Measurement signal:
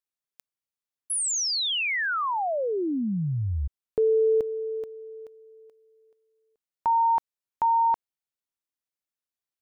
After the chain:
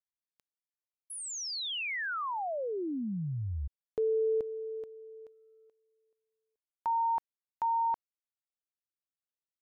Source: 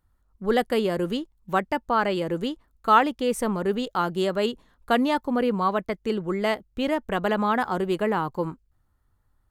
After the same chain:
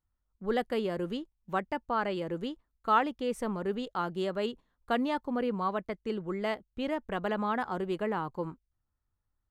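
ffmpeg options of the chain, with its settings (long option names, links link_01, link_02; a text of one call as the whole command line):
ffmpeg -i in.wav -af "agate=range=-7dB:threshold=-52dB:ratio=16:release=96:detection=peak,highshelf=frequency=7500:gain=-10,volume=-7.5dB" out.wav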